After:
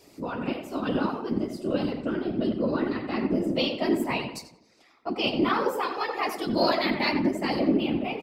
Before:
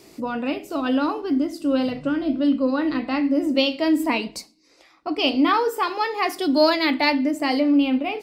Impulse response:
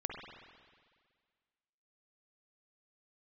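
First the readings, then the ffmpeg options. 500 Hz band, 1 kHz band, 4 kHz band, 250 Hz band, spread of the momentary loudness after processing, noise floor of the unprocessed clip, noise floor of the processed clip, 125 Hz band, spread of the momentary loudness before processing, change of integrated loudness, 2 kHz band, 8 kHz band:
-4.0 dB, -5.5 dB, -5.5 dB, -6.0 dB, 7 LU, -56 dBFS, -59 dBFS, n/a, 8 LU, -5.5 dB, -5.5 dB, -6.0 dB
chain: -filter_complex "[0:a]asplit=2[a][b];[b]adelay=89,lowpass=f=2.3k:p=1,volume=-7dB,asplit=2[c][d];[d]adelay=89,lowpass=f=2.3k:p=1,volume=0.48,asplit=2[e][f];[f]adelay=89,lowpass=f=2.3k:p=1,volume=0.48,asplit=2[g][h];[h]adelay=89,lowpass=f=2.3k:p=1,volume=0.48,asplit=2[i][j];[j]adelay=89,lowpass=f=2.3k:p=1,volume=0.48,asplit=2[k][l];[l]adelay=89,lowpass=f=2.3k:p=1,volume=0.48[m];[a][c][e][g][i][k][m]amix=inputs=7:normalize=0,afftfilt=real='hypot(re,im)*cos(2*PI*random(0))':imag='hypot(re,im)*sin(2*PI*random(1))':win_size=512:overlap=0.75"

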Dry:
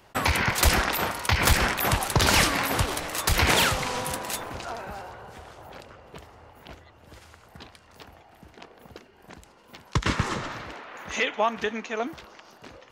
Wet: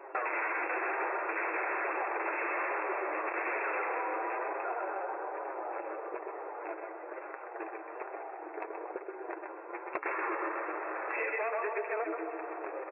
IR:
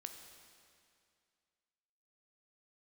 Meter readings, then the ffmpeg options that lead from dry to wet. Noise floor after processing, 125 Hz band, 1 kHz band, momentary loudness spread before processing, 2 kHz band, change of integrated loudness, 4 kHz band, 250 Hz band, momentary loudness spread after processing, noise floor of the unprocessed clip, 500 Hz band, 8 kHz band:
-46 dBFS, under -40 dB, -5.0 dB, 16 LU, -7.0 dB, -11.0 dB, under -40 dB, -10.5 dB, 10 LU, -55 dBFS, -3.5 dB, under -40 dB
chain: -filter_complex "[0:a]flanger=delay=7.1:depth=2.4:regen=20:speed=1.1:shape=triangular,aecho=1:1:131:0.335,asplit=2[a][b];[1:a]atrim=start_sample=2205,asetrate=42336,aresample=44100,adelay=126[c];[b][c]afir=irnorm=-1:irlink=0,volume=-2.5dB[d];[a][d]amix=inputs=2:normalize=0,adynamicsmooth=sensitivity=2.5:basefreq=1.7k,asplit=2[e][f];[f]aeval=exprs='0.266*sin(PI/2*6.31*val(0)/0.266)':c=same,volume=-6.5dB[g];[e][g]amix=inputs=2:normalize=0,afftfilt=real='re*between(b*sr/4096,310,2700)':imag='im*between(b*sr/4096,310,2700)':win_size=4096:overlap=0.75,acompressor=threshold=-36dB:ratio=3"

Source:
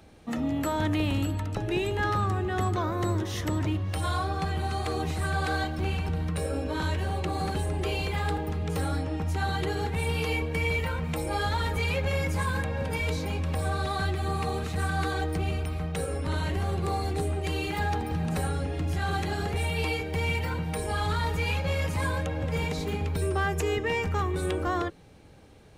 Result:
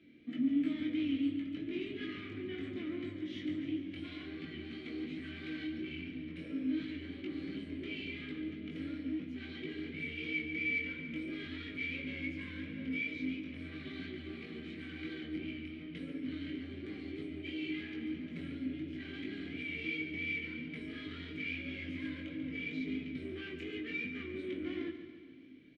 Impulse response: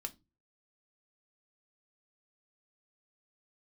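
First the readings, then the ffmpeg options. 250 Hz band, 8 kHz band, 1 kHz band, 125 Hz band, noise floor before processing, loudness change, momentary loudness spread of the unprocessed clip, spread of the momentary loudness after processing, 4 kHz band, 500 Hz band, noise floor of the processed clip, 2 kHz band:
-4.0 dB, under -30 dB, -31.0 dB, -22.0 dB, -34 dBFS, -10.5 dB, 3 LU, 9 LU, -10.5 dB, -15.5 dB, -48 dBFS, -7.5 dB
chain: -filter_complex "[0:a]asoftclip=type=tanh:threshold=-30dB,asplit=3[a][b][c];[a]bandpass=f=270:t=q:w=8,volume=0dB[d];[b]bandpass=f=2.29k:t=q:w=8,volume=-6dB[e];[c]bandpass=f=3.01k:t=q:w=8,volume=-9dB[f];[d][e][f]amix=inputs=3:normalize=0,flanger=delay=19:depth=3.9:speed=2.9,aecho=1:1:141|282|423|564|705|846|987:0.299|0.17|0.097|0.0553|0.0315|0.018|0.0102,asplit=2[g][h];[1:a]atrim=start_sample=2205,asetrate=33516,aresample=44100,lowpass=4.8k[i];[h][i]afir=irnorm=-1:irlink=0,volume=6.5dB[j];[g][j]amix=inputs=2:normalize=0,volume=1dB"

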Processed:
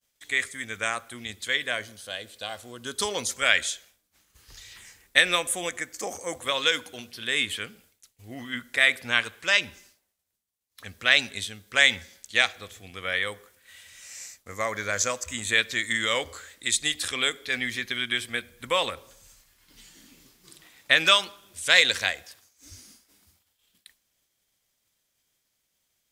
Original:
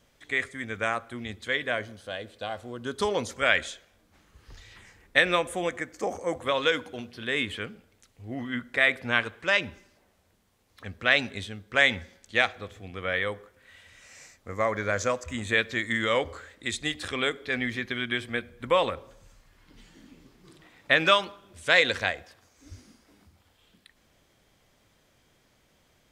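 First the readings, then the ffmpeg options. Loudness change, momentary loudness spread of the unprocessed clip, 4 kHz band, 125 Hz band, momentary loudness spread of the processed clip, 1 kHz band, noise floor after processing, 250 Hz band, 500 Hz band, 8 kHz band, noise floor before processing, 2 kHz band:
+2.5 dB, 16 LU, +6.0 dB, -5.5 dB, 18 LU, -2.0 dB, -76 dBFS, -5.0 dB, -4.5 dB, +12.0 dB, -66 dBFS, +1.5 dB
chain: -af "agate=range=-33dB:threshold=-54dB:ratio=3:detection=peak,crystalizer=i=7:c=0,volume=-5.5dB"

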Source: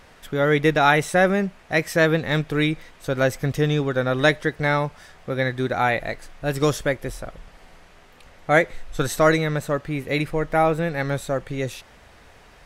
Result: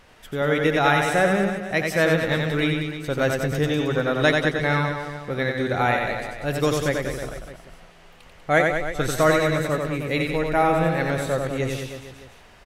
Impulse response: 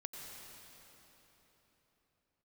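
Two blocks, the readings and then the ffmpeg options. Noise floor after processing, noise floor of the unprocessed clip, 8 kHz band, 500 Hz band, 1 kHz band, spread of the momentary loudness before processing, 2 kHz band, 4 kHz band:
-49 dBFS, -50 dBFS, 0.0 dB, -0.5 dB, 0.0 dB, 12 LU, 0.0 dB, +0.5 dB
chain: -af "equalizer=f=2.9k:t=o:w=0.27:g=3.5,dynaudnorm=f=780:g=5:m=5.5dB,aecho=1:1:90|193.5|312.5|449.4|606.8:0.631|0.398|0.251|0.158|0.1,volume=-3.5dB"

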